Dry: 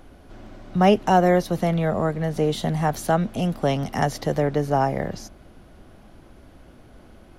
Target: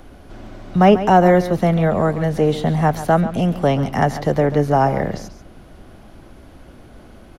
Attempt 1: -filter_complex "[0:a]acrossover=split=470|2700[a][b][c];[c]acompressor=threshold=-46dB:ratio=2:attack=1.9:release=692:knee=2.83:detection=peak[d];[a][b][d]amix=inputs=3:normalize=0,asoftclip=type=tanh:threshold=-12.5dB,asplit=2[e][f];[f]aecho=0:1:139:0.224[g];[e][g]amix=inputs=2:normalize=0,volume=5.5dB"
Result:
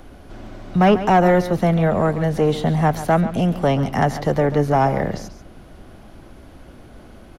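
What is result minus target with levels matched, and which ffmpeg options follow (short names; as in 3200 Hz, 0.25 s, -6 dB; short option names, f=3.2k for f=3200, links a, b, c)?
soft clip: distortion +15 dB
-filter_complex "[0:a]acrossover=split=470|2700[a][b][c];[c]acompressor=threshold=-46dB:ratio=2:attack=1.9:release=692:knee=2.83:detection=peak[d];[a][b][d]amix=inputs=3:normalize=0,asoftclip=type=tanh:threshold=-3dB,asplit=2[e][f];[f]aecho=0:1:139:0.224[g];[e][g]amix=inputs=2:normalize=0,volume=5.5dB"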